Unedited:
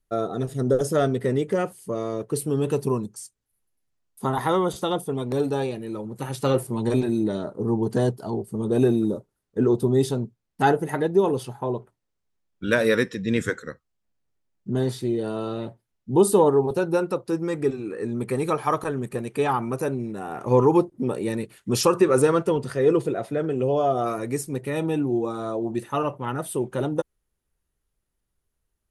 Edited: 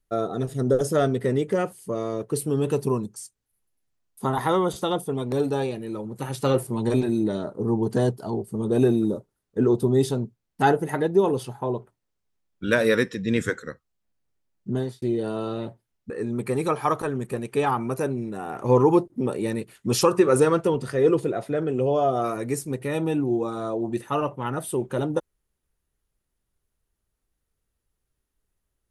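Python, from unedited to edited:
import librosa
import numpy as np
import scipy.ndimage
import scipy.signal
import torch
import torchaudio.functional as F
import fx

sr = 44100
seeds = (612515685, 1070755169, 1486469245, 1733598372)

y = fx.edit(x, sr, fx.fade_out_span(start_s=14.71, length_s=0.31),
    fx.cut(start_s=16.1, length_s=1.82), tone=tone)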